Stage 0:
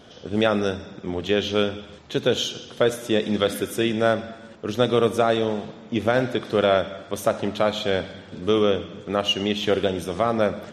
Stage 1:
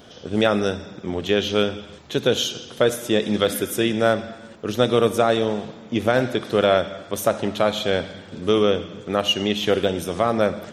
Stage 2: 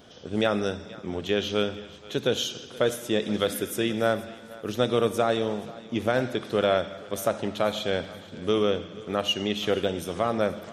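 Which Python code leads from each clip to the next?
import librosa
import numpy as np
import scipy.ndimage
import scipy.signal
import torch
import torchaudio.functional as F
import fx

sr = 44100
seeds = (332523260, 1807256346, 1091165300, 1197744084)

y1 = fx.high_shelf(x, sr, hz=11000.0, db=11.5)
y1 = F.gain(torch.from_numpy(y1), 1.5).numpy()
y2 = fx.echo_thinned(y1, sr, ms=477, feedback_pct=43, hz=420.0, wet_db=-19)
y2 = F.gain(torch.from_numpy(y2), -5.5).numpy()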